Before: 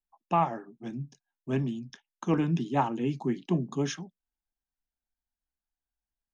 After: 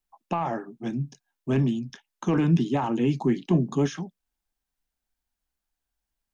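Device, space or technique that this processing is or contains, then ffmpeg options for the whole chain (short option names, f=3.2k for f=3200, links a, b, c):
de-esser from a sidechain: -filter_complex "[0:a]asplit=2[a][b];[b]highpass=f=5.9k:p=1,apad=whole_len=279583[c];[a][c]sidechaincompress=threshold=-48dB:ratio=6:attack=2.3:release=23,volume=7.5dB"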